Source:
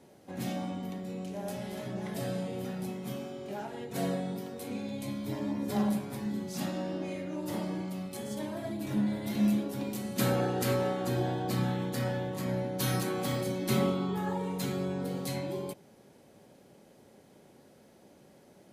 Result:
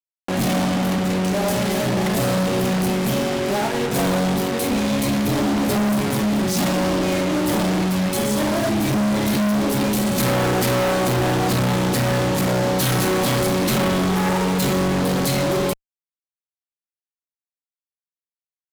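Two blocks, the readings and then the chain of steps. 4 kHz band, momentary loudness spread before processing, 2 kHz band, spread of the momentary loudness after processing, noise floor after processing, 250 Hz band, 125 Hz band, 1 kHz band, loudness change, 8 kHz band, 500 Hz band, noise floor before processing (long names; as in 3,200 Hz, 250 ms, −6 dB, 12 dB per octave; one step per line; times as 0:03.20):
+16.5 dB, 9 LU, +17.0 dB, 2 LU, below −85 dBFS, +12.5 dB, +12.5 dB, +15.0 dB, +13.5 dB, +16.5 dB, +13.5 dB, −59 dBFS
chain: fuzz pedal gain 48 dB, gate −45 dBFS
level −4.5 dB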